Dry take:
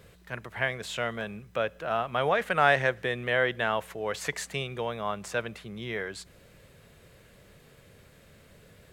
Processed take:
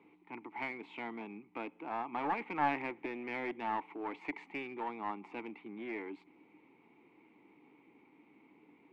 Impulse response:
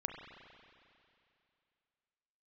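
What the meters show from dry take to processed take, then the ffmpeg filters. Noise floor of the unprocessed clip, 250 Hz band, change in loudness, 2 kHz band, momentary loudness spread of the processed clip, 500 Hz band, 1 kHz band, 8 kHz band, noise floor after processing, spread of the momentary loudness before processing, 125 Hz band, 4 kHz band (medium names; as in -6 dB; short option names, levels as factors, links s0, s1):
-57 dBFS, -2.5 dB, -10.5 dB, -13.5 dB, 13 LU, -14.0 dB, -6.5 dB, under -30 dB, -66 dBFS, 15 LU, -19.0 dB, -19.0 dB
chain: -filter_complex "[0:a]asplit=3[s0][s1][s2];[s0]bandpass=f=300:t=q:w=8,volume=1[s3];[s1]bandpass=f=870:t=q:w=8,volume=0.501[s4];[s2]bandpass=f=2240:t=q:w=8,volume=0.355[s5];[s3][s4][s5]amix=inputs=3:normalize=0,aeval=exprs='clip(val(0),-1,0.00422)':c=same,acrossover=split=200 2700:gain=0.126 1 0.0891[s6][s7][s8];[s6][s7][s8]amix=inputs=3:normalize=0,volume=3.35"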